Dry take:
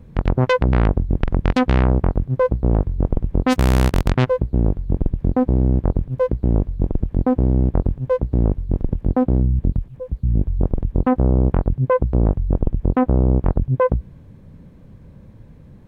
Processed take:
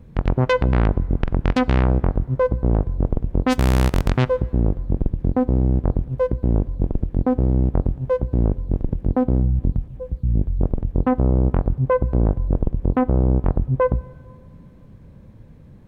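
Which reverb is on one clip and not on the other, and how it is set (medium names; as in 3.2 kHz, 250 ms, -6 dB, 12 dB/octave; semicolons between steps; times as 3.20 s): plate-style reverb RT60 2.3 s, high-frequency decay 0.5×, DRR 19.5 dB; trim -1.5 dB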